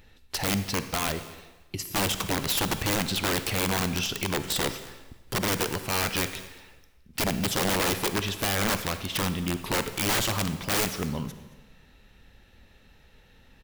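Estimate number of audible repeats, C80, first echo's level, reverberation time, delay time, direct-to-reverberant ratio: 1, 12.5 dB, −21.0 dB, 1.2 s, 224 ms, 10.0 dB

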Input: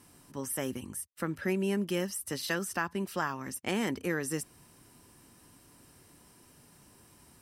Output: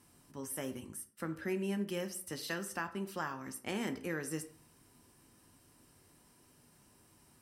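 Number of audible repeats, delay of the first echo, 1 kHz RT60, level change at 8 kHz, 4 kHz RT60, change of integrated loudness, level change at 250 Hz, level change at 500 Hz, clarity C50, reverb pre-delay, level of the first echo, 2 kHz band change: no echo audible, no echo audible, 0.55 s, −6.0 dB, 0.35 s, −6.0 dB, −5.5 dB, −5.5 dB, 13.5 dB, 8 ms, no echo audible, −6.0 dB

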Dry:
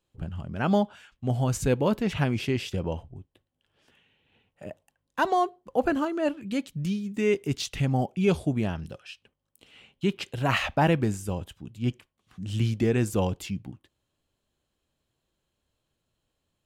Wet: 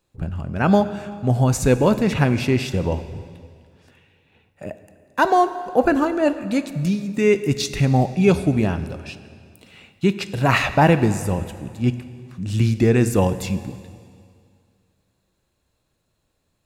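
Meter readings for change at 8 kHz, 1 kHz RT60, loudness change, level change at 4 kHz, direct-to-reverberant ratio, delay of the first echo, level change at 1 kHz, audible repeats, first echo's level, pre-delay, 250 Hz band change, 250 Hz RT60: +7.5 dB, 2.2 s, +7.5 dB, +5.0 dB, 11.5 dB, no echo audible, +8.0 dB, no echo audible, no echo audible, 7 ms, +7.5 dB, 2.2 s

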